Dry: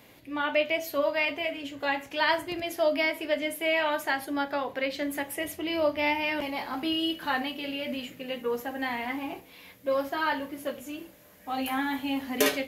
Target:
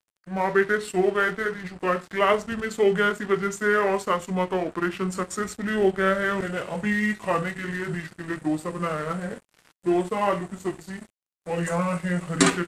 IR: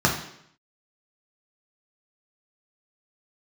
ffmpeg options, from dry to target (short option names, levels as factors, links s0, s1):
-af "aeval=exprs='sgn(val(0))*max(abs(val(0))-0.00531,0)':c=same,asetrate=28595,aresample=44100,atempo=1.54221,volume=1.88"